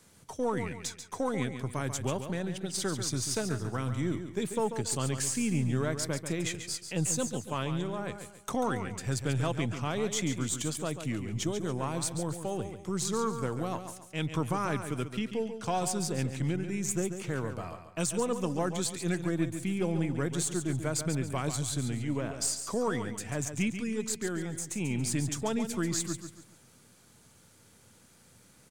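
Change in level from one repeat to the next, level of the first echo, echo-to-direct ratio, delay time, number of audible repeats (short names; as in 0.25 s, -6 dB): -9.0 dB, -9.0 dB, -8.5 dB, 0.14 s, 3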